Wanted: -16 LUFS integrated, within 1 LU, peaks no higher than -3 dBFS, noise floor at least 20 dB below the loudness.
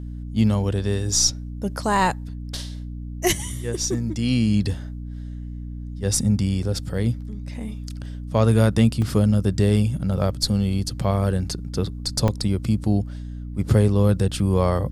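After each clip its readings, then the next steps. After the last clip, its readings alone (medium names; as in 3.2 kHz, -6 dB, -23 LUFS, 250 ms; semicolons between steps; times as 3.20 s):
dropouts 2; longest dropout 2.5 ms; hum 60 Hz; highest harmonic 300 Hz; hum level -30 dBFS; loudness -22.0 LUFS; peak level -4.5 dBFS; loudness target -16.0 LUFS
-> interpolate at 9.02/12.28 s, 2.5 ms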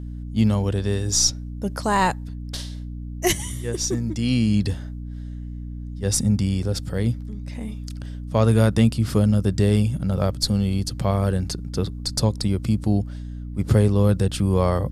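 dropouts 0; hum 60 Hz; highest harmonic 300 Hz; hum level -30 dBFS
-> hum notches 60/120/180/240/300 Hz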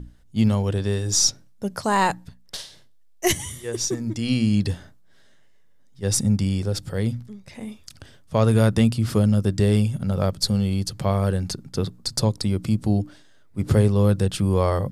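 hum not found; loudness -22.5 LUFS; peak level -5.5 dBFS; loudness target -16.0 LUFS
-> trim +6.5 dB; peak limiter -3 dBFS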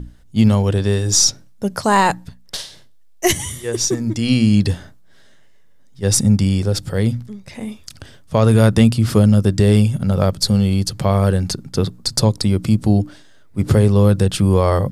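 loudness -16.5 LUFS; peak level -3.0 dBFS; noise floor -44 dBFS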